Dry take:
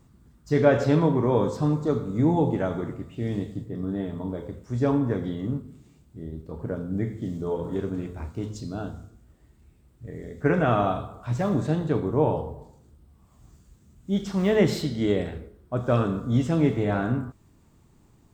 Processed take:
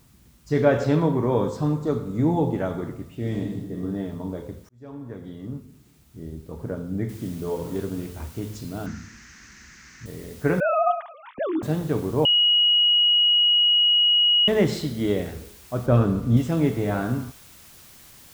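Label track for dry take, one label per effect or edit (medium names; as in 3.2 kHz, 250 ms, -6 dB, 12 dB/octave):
3.160000	3.820000	reverb throw, RT60 0.89 s, DRR 1.5 dB
4.690000	6.210000	fade in
7.090000	7.090000	noise floor step -62 dB -49 dB
8.860000	10.060000	FFT filter 120 Hz 0 dB, 210 Hz +10 dB, 620 Hz -12 dB, 1.8 kHz +14 dB, 3.4 kHz -5 dB, 6.3 kHz +7 dB, 9.6 kHz -21 dB
10.600000	11.630000	formants replaced by sine waves
12.250000	14.480000	bleep 2.9 kHz -15 dBFS
15.860000	16.370000	tilt EQ -2 dB/octave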